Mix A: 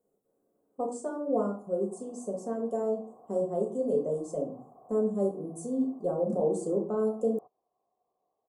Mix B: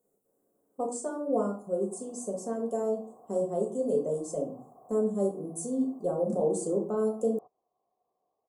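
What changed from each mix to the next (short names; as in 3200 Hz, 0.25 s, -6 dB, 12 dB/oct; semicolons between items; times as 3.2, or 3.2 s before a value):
speech: add high shelf 3900 Hz +9.5 dB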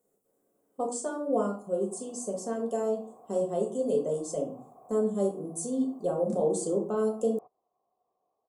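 master: add bell 3000 Hz +12.5 dB 1.5 oct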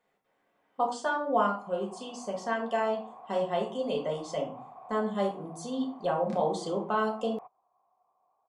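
master: remove EQ curve 150 Hz 0 dB, 240 Hz +3 dB, 450 Hz +6 dB, 910 Hz -12 dB, 1300 Hz -10 dB, 1900 Hz -20 dB, 3200 Hz -15 dB, 4500 Hz -8 dB, 8100 Hz +14 dB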